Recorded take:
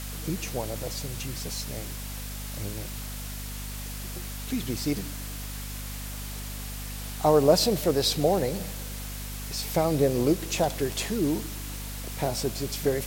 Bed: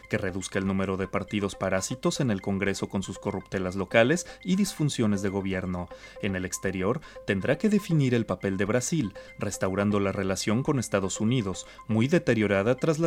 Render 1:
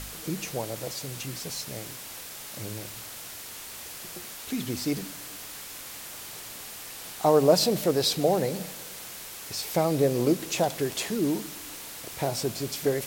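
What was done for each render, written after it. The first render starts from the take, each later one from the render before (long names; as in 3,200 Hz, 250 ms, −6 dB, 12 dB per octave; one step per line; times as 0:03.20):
hum removal 50 Hz, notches 5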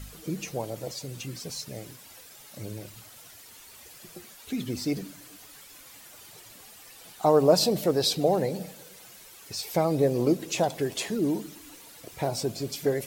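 broadband denoise 11 dB, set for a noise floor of −41 dBFS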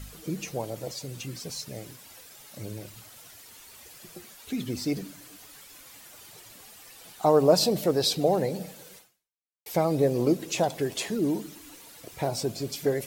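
0:08.97–0:09.66: fade out exponential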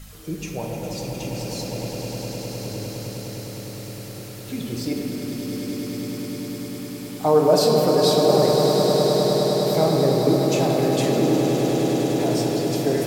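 echo that builds up and dies away 102 ms, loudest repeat 8, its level −10 dB
rectangular room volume 190 cubic metres, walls hard, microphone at 0.47 metres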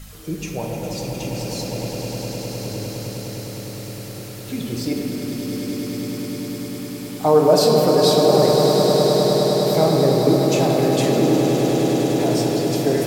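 level +2.5 dB
brickwall limiter −3 dBFS, peak gain reduction 1 dB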